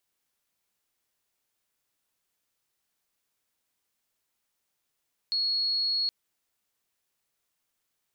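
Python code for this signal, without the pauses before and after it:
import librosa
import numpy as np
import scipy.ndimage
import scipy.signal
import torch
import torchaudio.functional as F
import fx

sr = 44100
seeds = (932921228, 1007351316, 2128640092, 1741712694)

y = 10.0 ** (-24.5 / 20.0) * np.sin(2.0 * np.pi * (4330.0 * (np.arange(round(0.77 * sr)) / sr)))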